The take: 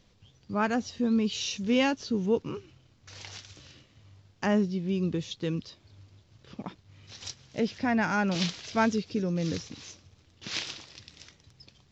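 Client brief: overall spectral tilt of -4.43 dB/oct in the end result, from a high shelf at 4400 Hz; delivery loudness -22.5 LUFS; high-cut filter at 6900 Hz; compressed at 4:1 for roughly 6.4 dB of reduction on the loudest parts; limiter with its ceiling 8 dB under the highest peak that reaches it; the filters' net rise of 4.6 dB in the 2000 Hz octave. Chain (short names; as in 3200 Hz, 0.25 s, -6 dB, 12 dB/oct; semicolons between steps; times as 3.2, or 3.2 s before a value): LPF 6900 Hz; bell 2000 Hz +7.5 dB; high shelf 4400 Hz -6.5 dB; compressor 4:1, threshold -26 dBFS; gain +12 dB; limiter -11 dBFS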